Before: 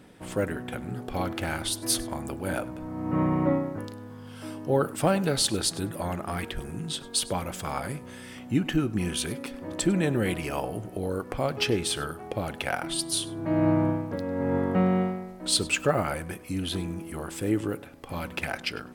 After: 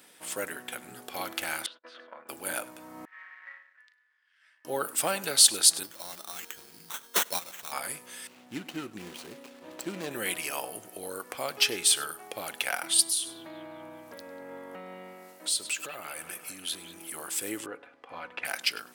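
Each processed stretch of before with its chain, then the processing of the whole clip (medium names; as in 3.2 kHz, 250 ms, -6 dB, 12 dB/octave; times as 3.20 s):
1.66–2.29 s: gate -35 dBFS, range -39 dB + compression 4:1, threshold -32 dBFS + cabinet simulation 330–2500 Hz, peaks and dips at 340 Hz -10 dB, 520 Hz +8 dB, 780 Hz -8 dB, 1.4 kHz +7 dB, 2.2 kHz -4 dB
3.05–4.65 s: power-law waveshaper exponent 1.4 + ladder band-pass 1.9 kHz, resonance 80%
5.83–7.72 s: gate -29 dBFS, range -8 dB + dynamic bell 4.7 kHz, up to +4 dB, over -42 dBFS, Q 1.3 + sample-rate reducer 4.8 kHz
8.27–10.11 s: median filter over 25 samples + treble shelf 8.1 kHz -9.5 dB
13.03–17.10 s: compression 4:1, threshold -33 dBFS + bucket-brigade echo 191 ms, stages 4096, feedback 67%, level -12 dB
17.66–18.45 s: low-pass 1.8 kHz + peaking EQ 210 Hz -8 dB 0.64 oct + comb 4.1 ms, depth 39%
whole clip: high-pass 240 Hz 6 dB/octave; tilt EQ +4 dB/octave; trim -3 dB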